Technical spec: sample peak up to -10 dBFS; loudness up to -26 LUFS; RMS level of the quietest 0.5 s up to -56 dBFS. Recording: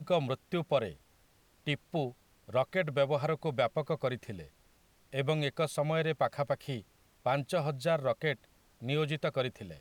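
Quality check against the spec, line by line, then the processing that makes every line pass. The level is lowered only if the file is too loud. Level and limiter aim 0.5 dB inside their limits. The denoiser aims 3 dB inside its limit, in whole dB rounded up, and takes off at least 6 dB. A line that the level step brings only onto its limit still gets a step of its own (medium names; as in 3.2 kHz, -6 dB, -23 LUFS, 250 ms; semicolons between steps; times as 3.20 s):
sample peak -15.0 dBFS: pass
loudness -33.0 LUFS: pass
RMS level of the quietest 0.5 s -66 dBFS: pass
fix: none needed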